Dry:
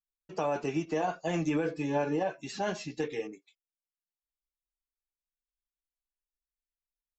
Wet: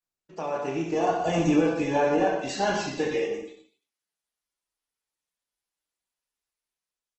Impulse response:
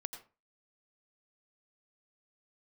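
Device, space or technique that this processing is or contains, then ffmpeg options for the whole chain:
far-field microphone of a smart speaker: -filter_complex "[0:a]asettb=1/sr,asplit=3[s0][s1][s2];[s0]atrim=end=0.924[s3];[s1]atrim=start=0.92:end=1.71,asetpts=PTS-STARTPTS,afade=t=in:d=0.004:c=qsin,afade=t=out:st=0.786:d=0.004:c=qsin,equalizer=f=1800:w=2.3:g=-6[s4];[s2]atrim=start=1.706[s5];[s3][s4]acrossfade=d=0.004:c1=hsin:c2=qsin[s6];[s6][s5]acrossfade=d=0.004:c1=qsin:c2=hsin,aecho=1:1:30|67.5|114.4|173|246.2:0.631|0.398|0.251|0.158|0.1[s7];[1:a]atrim=start_sample=2205[s8];[s7][s8]afir=irnorm=-1:irlink=0,highpass=f=150:p=1,dynaudnorm=f=360:g=5:m=2.51" -ar 48000 -c:a libopus -b:a 16k

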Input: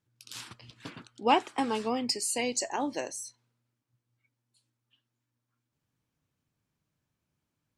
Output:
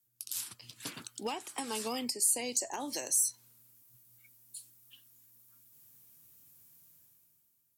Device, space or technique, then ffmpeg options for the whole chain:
FM broadcast chain: -filter_complex "[0:a]highpass=f=78:w=0.5412,highpass=f=78:w=1.3066,dynaudnorm=f=120:g=13:m=5.96,acrossover=split=180|1400[s0][s1][s2];[s0]acompressor=threshold=0.00562:ratio=4[s3];[s1]acompressor=threshold=0.0631:ratio=4[s4];[s2]acompressor=threshold=0.0224:ratio=4[s5];[s3][s4][s5]amix=inputs=3:normalize=0,aemphasis=mode=production:type=50fm,alimiter=limit=0.133:level=0:latency=1:release=426,asoftclip=type=hard:threshold=0.106,lowpass=f=15000:w=0.5412,lowpass=f=15000:w=1.3066,aemphasis=mode=production:type=50fm,volume=0.376"

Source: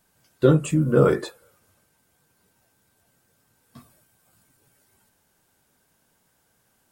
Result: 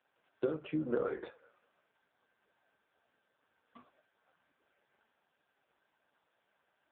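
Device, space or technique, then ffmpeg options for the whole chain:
voicemail: -af "highpass=410,lowpass=3000,acompressor=threshold=0.0398:ratio=10,volume=0.891" -ar 8000 -c:a libopencore_amrnb -b:a 5150

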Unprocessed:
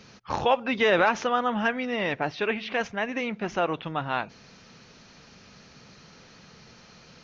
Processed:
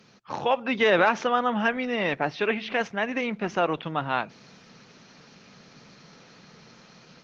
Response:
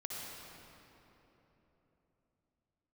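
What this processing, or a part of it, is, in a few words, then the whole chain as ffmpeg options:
video call: -af "highpass=f=120:w=0.5412,highpass=f=120:w=1.3066,dynaudnorm=f=360:g=3:m=2,volume=0.631" -ar 48000 -c:a libopus -b:a 24k

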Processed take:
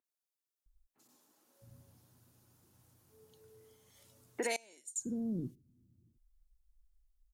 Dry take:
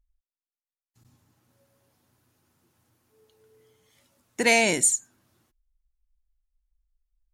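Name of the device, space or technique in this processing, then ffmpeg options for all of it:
serial compression, peaks first: -filter_complex "[0:a]equalizer=f=1500:w=0.32:g=-6,acrossover=split=290|2200[s0][s1][s2];[s2]adelay=40[s3];[s0]adelay=660[s4];[s4][s1][s3]amix=inputs=3:normalize=0,acompressor=threshold=0.0316:ratio=5,acompressor=threshold=0.00562:ratio=1.5,asettb=1/sr,asplit=3[s5][s6][s7];[s5]atrim=end=4.564[s8];[s6]atrim=start=4.56:end=4.96,asetpts=PTS-STARTPTS,afade=t=in:d=0.004:c=qsin,afade=t=out:st=0.396:d=0.004:c=qsin,agate=range=0.0631:threshold=0.0224:ratio=16:detection=peak[s9];[s7]atrim=start=4.956[s10];[s8][s9]acrossfade=d=0.004:c1=hsin:c2=qsin[s11];[s11][s10]acrossfade=d=0.004:c1=qsin:c2=hsin,volume=1.5"

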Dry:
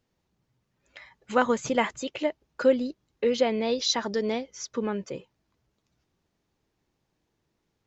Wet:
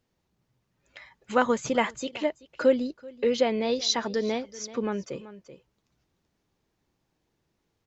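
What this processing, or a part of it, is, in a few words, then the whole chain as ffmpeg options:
ducked delay: -filter_complex "[0:a]asplit=3[s0][s1][s2];[s1]adelay=382,volume=0.376[s3];[s2]apad=whole_len=363863[s4];[s3][s4]sidechaincompress=threshold=0.0141:ratio=6:attack=33:release=937[s5];[s0][s5]amix=inputs=2:normalize=0"

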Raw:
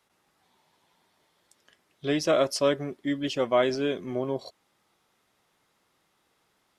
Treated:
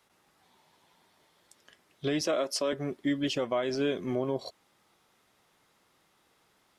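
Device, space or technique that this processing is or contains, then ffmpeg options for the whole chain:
stacked limiters: -filter_complex "[0:a]asettb=1/sr,asplit=3[s0][s1][s2];[s0]atrim=end=2.214[s3];[s1]atrim=start=2.21:end=2.73,asetpts=PTS-STARTPTS,afade=t=in:d=0.004:c=qsin,afade=t=out:st=0.516:d=0.004:c=qsin,highpass=f=190:w=0.5412,highpass=f=190:w=1.3066[s4];[s2]atrim=start=2.726[s5];[s3][s4]acrossfade=d=0.004:c1=hsin:c2=qsin[s6];[s6][s5]acrossfade=d=0.004:c1=qsin:c2=hsin,alimiter=limit=0.15:level=0:latency=1:release=356,alimiter=limit=0.075:level=0:latency=1:release=169,volume=1.33"

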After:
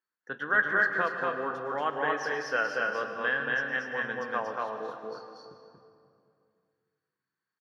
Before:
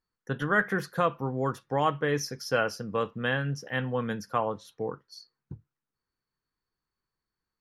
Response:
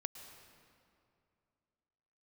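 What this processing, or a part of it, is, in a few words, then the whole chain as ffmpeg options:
station announcement: -filter_complex "[0:a]highpass=320,lowpass=4600,equalizer=f=1600:t=o:w=0.56:g=9,aecho=1:1:233.2|265.3:0.794|0.355[s0];[1:a]atrim=start_sample=2205[s1];[s0][s1]afir=irnorm=-1:irlink=0,volume=0.708"

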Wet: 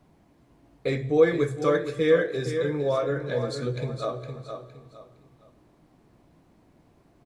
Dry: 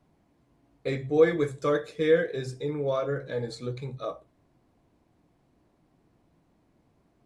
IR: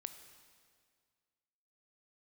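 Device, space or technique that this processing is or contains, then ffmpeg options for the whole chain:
compressed reverb return: -filter_complex "[0:a]aecho=1:1:462|924|1386:0.316|0.0917|0.0266,asplit=2[s0][s1];[1:a]atrim=start_sample=2205[s2];[s1][s2]afir=irnorm=-1:irlink=0,acompressor=threshold=0.0112:ratio=6,volume=1.78[s3];[s0][s3]amix=inputs=2:normalize=0"

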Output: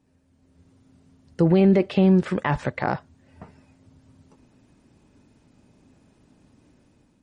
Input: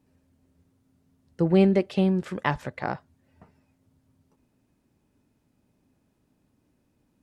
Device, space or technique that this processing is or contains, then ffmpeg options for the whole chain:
low-bitrate web radio: -filter_complex "[0:a]asettb=1/sr,asplit=3[s0][s1][s2];[s0]atrim=end=1.604[s3];[s1]atrim=start=1.6:end=2.88,asetpts=PTS-STARTPTS,afade=t=in:d=0.004:c=qsin,afade=t=out:st=1.276:d=0.004:c=qsin,acrossover=split=3300[s4][s5];[s5]acompressor=threshold=0.00224:ratio=4:attack=1:release=60[s6];[s4][s6]amix=inputs=2:normalize=0[s7];[s2]atrim=start=2.876[s8];[s3][s7]acrossfade=d=0.004:c1=hsin:c2=qsin[s9];[s9][s8]acrossfade=d=0.004:c1=qsin:c2=hsin,dynaudnorm=f=240:g=5:m=3.35,alimiter=limit=0.282:level=0:latency=1:release=24,volume=1.19" -ar 44100 -c:a libmp3lame -b:a 40k

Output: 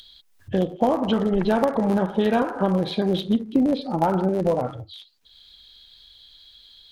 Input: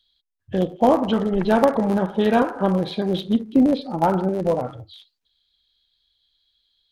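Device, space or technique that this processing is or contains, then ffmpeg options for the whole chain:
upward and downward compression: -af "acompressor=mode=upward:threshold=0.0141:ratio=2.5,acompressor=threshold=0.112:ratio=4,volume=1.26"

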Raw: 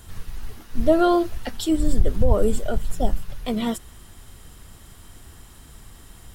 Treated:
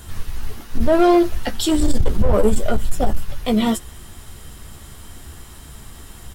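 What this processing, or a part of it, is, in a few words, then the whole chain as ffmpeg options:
limiter into clipper: -filter_complex "[0:a]alimiter=limit=0.237:level=0:latency=1:release=17,asoftclip=type=hard:threshold=0.158,asettb=1/sr,asplit=3[s0][s1][s2];[s0]atrim=end=1.644[s3];[s1]atrim=start=1.64:end=2.1,asetpts=PTS-STARTPTS,afade=t=in:d=0.004:c=qsin,afade=t=out:st=0.456:d=0.004:c=qsin,equalizer=f=5000:t=o:w=2.3:g=5.5[s4];[s2]atrim=start=2.096[s5];[s3][s4]acrossfade=d=0.004:c1=hsin:c2=qsin[s6];[s6][s5]acrossfade=d=0.004:c1=qsin:c2=hsin,asplit=2[s7][s8];[s8]adelay=14,volume=0.398[s9];[s7][s9]amix=inputs=2:normalize=0,volume=2"

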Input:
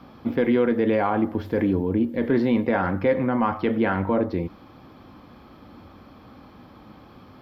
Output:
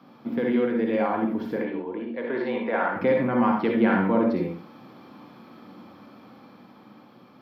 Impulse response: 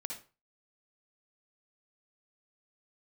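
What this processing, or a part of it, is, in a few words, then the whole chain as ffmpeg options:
far laptop microphone: -filter_complex "[0:a]asettb=1/sr,asplit=3[s0][s1][s2];[s0]atrim=end=1.564[s3];[s1]atrim=start=1.56:end=2.96,asetpts=PTS-STARTPTS,afade=t=in:d=0.004:c=qsin,afade=t=out:st=1.396:d=0.004:c=qsin,acrossover=split=410 4000:gain=0.158 1 0.0708[s4][s5][s6];[s4][s5][s6]amix=inputs=3:normalize=0[s7];[s2]atrim=start=2.956[s8];[s3][s7]acrossfade=d=0.004:c1=hsin:c2=qsin[s9];[s9][s8]acrossfade=d=0.004:c1=qsin:c2=hsin[s10];[1:a]atrim=start_sample=2205[s11];[s10][s11]afir=irnorm=-1:irlink=0,highpass=f=140:w=0.5412,highpass=f=140:w=1.3066,dynaudnorm=f=680:g=5:m=1.68,volume=0.75"

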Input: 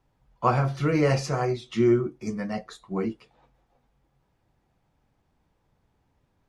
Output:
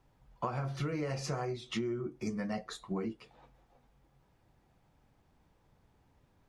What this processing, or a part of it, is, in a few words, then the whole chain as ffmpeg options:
serial compression, leveller first: -af "acompressor=threshold=0.0794:ratio=6,acompressor=threshold=0.0178:ratio=5,volume=1.19"

